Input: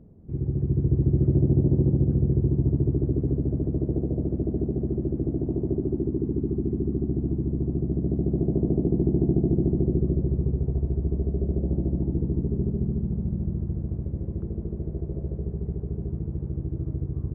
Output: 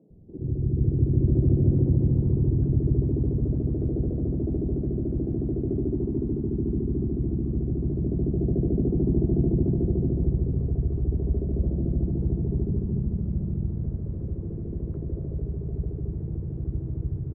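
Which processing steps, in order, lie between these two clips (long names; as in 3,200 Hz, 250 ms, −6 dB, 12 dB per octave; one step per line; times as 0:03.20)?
three-band delay without the direct sound mids, lows, highs 100/520 ms, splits 240/770 Hz
pitch-shifted copies added −5 semitones −5 dB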